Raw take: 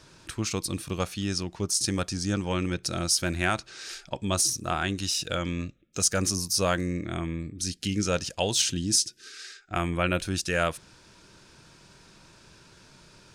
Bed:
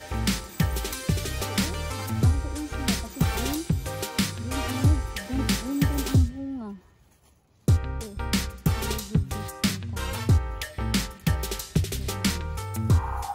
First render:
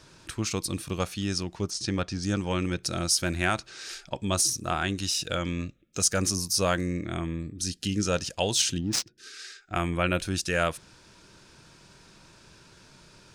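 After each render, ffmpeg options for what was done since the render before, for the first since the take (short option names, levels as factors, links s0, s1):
-filter_complex "[0:a]asettb=1/sr,asplit=3[s0][s1][s2];[s0]atrim=end=1.704[s3];[s1]atrim=start=1.7:end=2.23,asetpts=PTS-STARTPTS,afade=t=in:d=0.004:c=qsin,afade=t=out:st=0.526:d=0.004:c=qsin,lowpass=4400[s4];[s2]atrim=start=2.226[s5];[s3][s4]acrossfade=d=0.004:c1=hsin:c2=qsin[s6];[s6][s5]acrossfade=d=0.004:c1=qsin:c2=hsin,asettb=1/sr,asplit=3[s7][s8][s9];[s7]atrim=end=7.224[s10];[s8]atrim=start=7.22:end=8.18,asetpts=PTS-STARTPTS,afade=t=in:d=0.004:c=qsin,afade=t=out:st=0.956:d=0.004:c=qsin,bandreject=f=2200:w=9.1[s11];[s9]atrim=start=8.176[s12];[s10][s11]acrossfade=d=0.004:c1=hsin:c2=qsin[s13];[s13][s12]acrossfade=d=0.004:c1=qsin:c2=hsin,asettb=1/sr,asplit=3[s14][s15][s16];[s14]atrim=end=8.784[s17];[s15]atrim=start=8.78:end=9.18,asetpts=PTS-STARTPTS,afade=t=in:d=0.004:c=qsin,afade=t=out:st=0.396:d=0.004:c=qsin,adynamicsmooth=sensitivity=2.5:basefreq=990[s18];[s16]atrim=start=9.176[s19];[s17][s18]acrossfade=d=0.004:c1=hsin:c2=qsin[s20];[s20][s19]acrossfade=d=0.004:c1=qsin:c2=hsin"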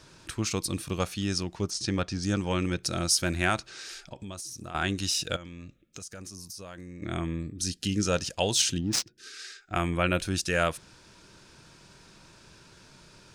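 -filter_complex "[0:a]asettb=1/sr,asplit=3[s0][s1][s2];[s0]atrim=end=3.634[s3];[s1]atrim=start=3.63:end=4.75,asetpts=PTS-STARTPTS,afade=t=in:d=0.004:c=qsin,afade=t=out:st=1.116:d=0.004:c=qsin,acompressor=threshold=0.0141:ratio=6:attack=3.2:release=140:knee=1:detection=peak[s4];[s2]atrim=start=4.746[s5];[s3][s4]acrossfade=d=0.004:c1=hsin:c2=qsin[s6];[s6][s5]acrossfade=d=0.004:c1=qsin:c2=hsin,asettb=1/sr,asplit=3[s7][s8][s9];[s7]atrim=end=5.364[s10];[s8]atrim=start=5.36:end=7.02,asetpts=PTS-STARTPTS,afade=t=in:d=0.004:c=qsin,afade=t=out:st=1.656:d=0.004:c=qsin,acompressor=threshold=0.0112:ratio=10:attack=3.2:release=140:knee=1:detection=peak[s11];[s9]atrim=start=7.016[s12];[s10][s11]acrossfade=d=0.004:c1=hsin:c2=qsin[s13];[s13][s12]acrossfade=d=0.004:c1=qsin:c2=hsin"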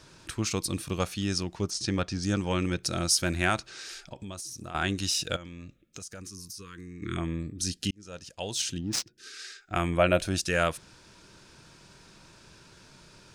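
-filter_complex "[0:a]asplit=3[s0][s1][s2];[s0]afade=t=out:st=6.2:d=0.02[s3];[s1]asuperstop=centerf=690:order=12:qfactor=1.3,afade=t=in:st=6.2:d=0.02,afade=t=out:st=7.16:d=0.02[s4];[s2]afade=t=in:st=7.16:d=0.02[s5];[s3][s4][s5]amix=inputs=3:normalize=0,asettb=1/sr,asplit=3[s6][s7][s8];[s6]atrim=end=9.984[s9];[s7]atrim=start=9.98:end=10.38,asetpts=PTS-STARTPTS,afade=t=in:d=0.004:c=qsin,afade=t=out:st=0.396:d=0.004:c=qsin,equalizer=f=640:w=3.2:g=10.5[s10];[s8]atrim=start=10.376[s11];[s9][s10]acrossfade=d=0.004:c1=hsin:c2=qsin[s12];[s12][s11]acrossfade=d=0.004:c1=qsin:c2=hsin,asplit=2[s13][s14];[s13]atrim=end=7.91,asetpts=PTS-STARTPTS,afade=t=out:st=7.906:d=0.004:c=hsin[s15];[s14]atrim=start=7.91,asetpts=PTS-STARTPTS,afade=t=in:d=1.41[s16];[s15][s16]concat=n=2:v=0:a=1"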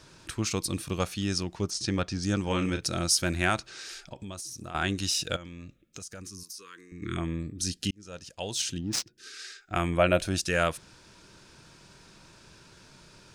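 -filter_complex "[0:a]asettb=1/sr,asplit=3[s0][s1][s2];[s0]atrim=end=2.444[s3];[s1]atrim=start=2.44:end=2.85,asetpts=PTS-STARTPTS,afade=t=in:d=0.004:c=qsin,afade=t=out:st=0.406:d=0.004:c=qsin,asplit=2[s4][s5];[s5]adelay=37,volume=0.447[s6];[s4][s6]amix=inputs=2:normalize=0,atrim=end_sample=18081[s7];[s2]atrim=start=2.846[s8];[s3][s7]acrossfade=d=0.004:c1=hsin:c2=qsin[s9];[s9][s8]acrossfade=d=0.004:c1=qsin:c2=hsin,asettb=1/sr,asplit=3[s10][s11][s12];[s10]atrim=end=6.434[s13];[s11]atrim=start=6.43:end=6.92,asetpts=PTS-STARTPTS,afade=t=in:d=0.004:c=qsin,afade=t=out:st=0.486:d=0.004:c=qsin,highpass=430[s14];[s12]atrim=start=6.916[s15];[s13][s14]acrossfade=d=0.004:c1=hsin:c2=qsin[s16];[s16][s15]acrossfade=d=0.004:c1=qsin:c2=hsin"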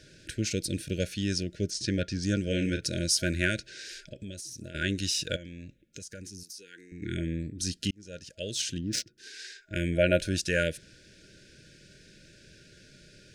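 -af "afftfilt=real='re*(1-between(b*sr/4096,640,1400))':imag='im*(1-between(b*sr/4096,640,1400))':win_size=4096:overlap=0.75,highshelf=f=9700:g=-6.5"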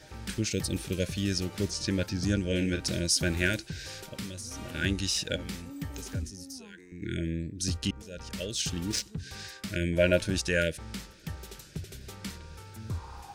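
-filter_complex "[1:a]volume=0.188[s0];[0:a][s0]amix=inputs=2:normalize=0"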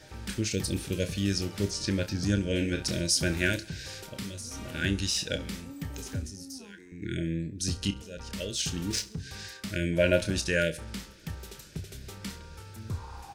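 -filter_complex "[0:a]asplit=2[s0][s1];[s1]adelay=30,volume=0.299[s2];[s0][s2]amix=inputs=2:normalize=0,aecho=1:1:67|134|201|268:0.0944|0.0491|0.0255|0.0133"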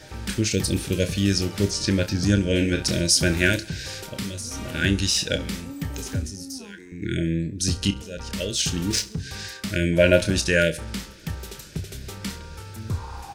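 -af "volume=2.24"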